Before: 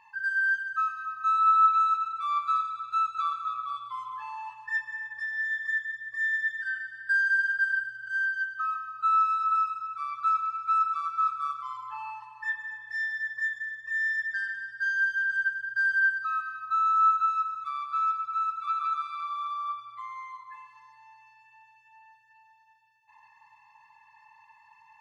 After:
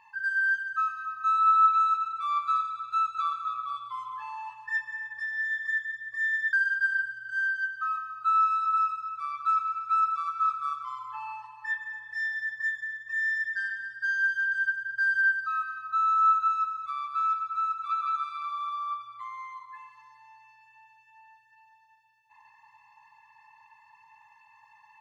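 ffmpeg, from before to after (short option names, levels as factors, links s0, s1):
-filter_complex "[0:a]asplit=2[s0][s1];[s0]atrim=end=6.532[s2];[s1]atrim=start=7.308[s3];[s2][s3]acrossfade=d=0.004:c1=hsin:c2=hsin"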